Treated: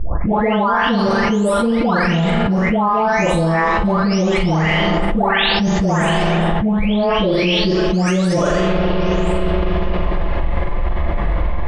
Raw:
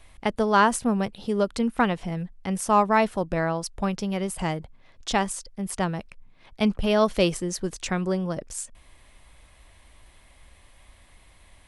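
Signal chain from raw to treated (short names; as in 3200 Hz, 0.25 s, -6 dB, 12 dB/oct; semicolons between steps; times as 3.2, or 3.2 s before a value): spectral delay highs late, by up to 0.728 s; LPF 5100 Hz 12 dB/oct; low-pass opened by the level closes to 960 Hz, open at -21.5 dBFS; flutter echo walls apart 7.5 m, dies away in 0.51 s; reverb RT60 4.8 s, pre-delay 30 ms, DRR 16 dB; fast leveller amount 100%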